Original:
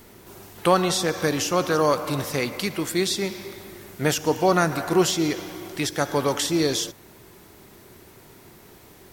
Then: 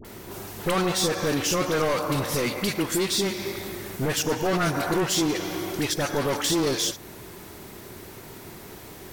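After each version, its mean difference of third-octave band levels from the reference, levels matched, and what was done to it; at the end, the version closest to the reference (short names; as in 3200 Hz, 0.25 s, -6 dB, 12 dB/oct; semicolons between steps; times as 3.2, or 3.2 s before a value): 6.0 dB: in parallel at +1 dB: compressor, threshold -32 dBFS, peak gain reduction 18 dB; on the sum: overloaded stage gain 21 dB; dispersion highs, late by 49 ms, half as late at 1100 Hz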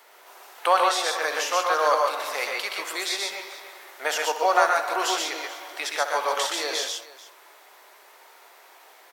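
10.0 dB: HPF 620 Hz 24 dB/oct; high shelf 4400 Hz -9.5 dB; tapped delay 66/123/142/436 ms -11.5/-4.5/-5.5/-18.5 dB; gain +2 dB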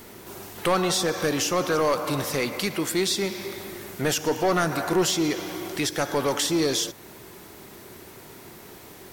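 3.5 dB: low shelf 120 Hz -7 dB; in parallel at -2.5 dB: compressor, threshold -34 dBFS, peak gain reduction 19.5 dB; on the sum: soft clip -15.5 dBFS, distortion -12 dB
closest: third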